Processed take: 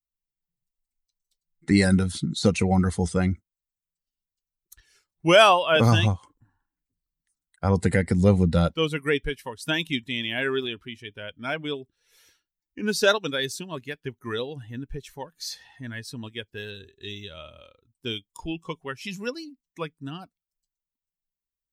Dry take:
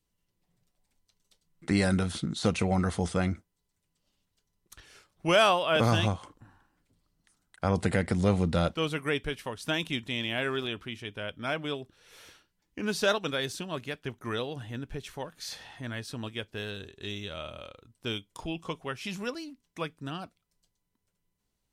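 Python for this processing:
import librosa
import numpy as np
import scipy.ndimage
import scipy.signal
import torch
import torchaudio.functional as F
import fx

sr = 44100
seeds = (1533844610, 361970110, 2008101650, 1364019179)

y = fx.bin_expand(x, sr, power=1.5)
y = y * librosa.db_to_amplitude(8.5)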